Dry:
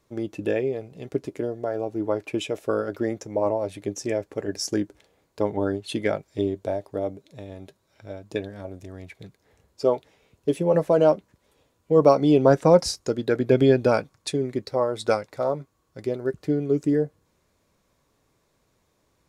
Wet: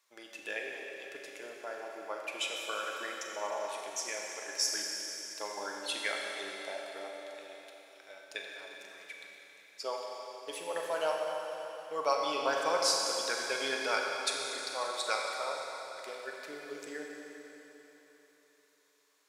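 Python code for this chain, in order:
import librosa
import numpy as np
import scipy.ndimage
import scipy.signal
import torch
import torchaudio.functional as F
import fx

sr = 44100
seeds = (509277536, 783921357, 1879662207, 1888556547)

y = scipy.signal.sosfilt(scipy.signal.butter(2, 1400.0, 'highpass', fs=sr, output='sos'), x)
y = fx.rev_schroeder(y, sr, rt60_s=3.8, comb_ms=30, drr_db=-0.5)
y = y * 10.0 ** (-1.0 / 20.0)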